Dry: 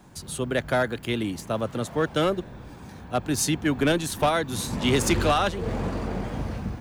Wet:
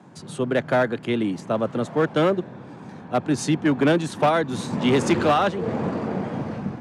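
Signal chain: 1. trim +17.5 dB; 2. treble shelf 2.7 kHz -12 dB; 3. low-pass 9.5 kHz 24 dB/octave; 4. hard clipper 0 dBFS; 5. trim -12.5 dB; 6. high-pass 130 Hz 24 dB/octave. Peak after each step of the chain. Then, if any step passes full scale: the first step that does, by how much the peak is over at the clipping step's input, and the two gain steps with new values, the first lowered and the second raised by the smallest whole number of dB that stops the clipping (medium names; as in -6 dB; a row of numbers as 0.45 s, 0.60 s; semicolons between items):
+3.0 dBFS, +3.0 dBFS, +3.0 dBFS, 0.0 dBFS, -12.5 dBFS, -7.5 dBFS; step 1, 3.0 dB; step 1 +14.5 dB, step 5 -9.5 dB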